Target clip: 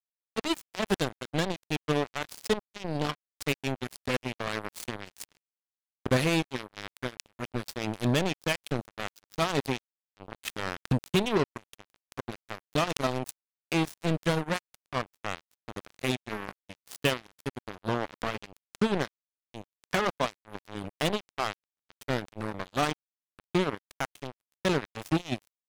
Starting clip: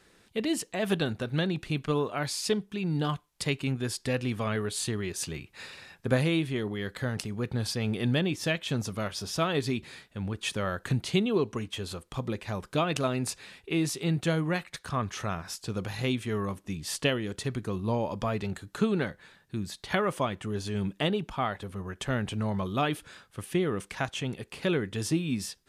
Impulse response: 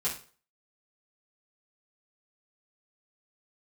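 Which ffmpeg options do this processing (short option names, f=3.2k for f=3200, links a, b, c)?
-af "acrusher=bits=3:mix=0:aa=0.5"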